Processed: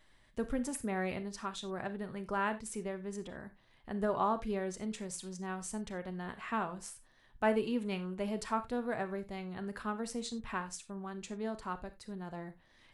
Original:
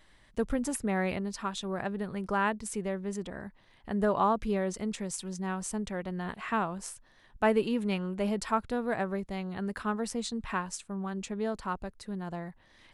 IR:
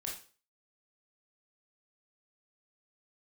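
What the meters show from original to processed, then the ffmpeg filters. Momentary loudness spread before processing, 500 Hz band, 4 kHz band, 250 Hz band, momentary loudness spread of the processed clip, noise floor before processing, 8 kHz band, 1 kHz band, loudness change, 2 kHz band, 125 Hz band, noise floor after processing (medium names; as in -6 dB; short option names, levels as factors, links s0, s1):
11 LU, -5.0 dB, -5.0 dB, -5.5 dB, 12 LU, -62 dBFS, -5.0 dB, -5.0 dB, -5.0 dB, -5.0 dB, -6.5 dB, -66 dBFS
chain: -filter_complex "[0:a]asplit=2[s0][s1];[1:a]atrim=start_sample=2205,afade=t=out:st=0.14:d=0.01,atrim=end_sample=6615,adelay=8[s2];[s1][s2]afir=irnorm=-1:irlink=0,volume=0.376[s3];[s0][s3]amix=inputs=2:normalize=0,volume=0.531"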